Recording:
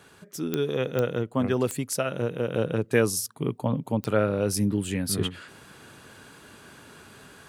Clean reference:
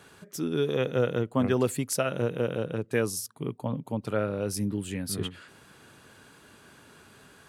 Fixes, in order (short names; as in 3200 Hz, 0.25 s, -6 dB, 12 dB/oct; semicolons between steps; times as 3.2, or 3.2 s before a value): de-click; gain correction -5 dB, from 2.54